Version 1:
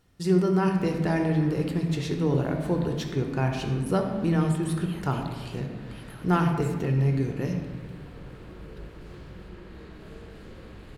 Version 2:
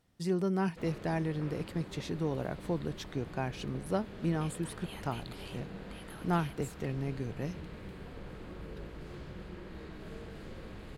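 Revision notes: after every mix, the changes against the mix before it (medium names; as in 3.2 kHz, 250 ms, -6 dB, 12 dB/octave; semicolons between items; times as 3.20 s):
speech -3.5 dB; reverb: off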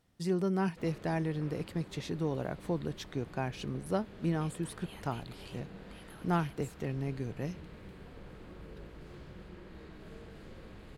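background -4.0 dB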